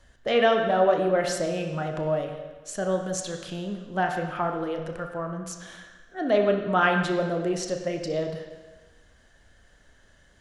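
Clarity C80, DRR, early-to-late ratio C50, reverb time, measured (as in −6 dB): 8.0 dB, 3.5 dB, 6.0 dB, 1.3 s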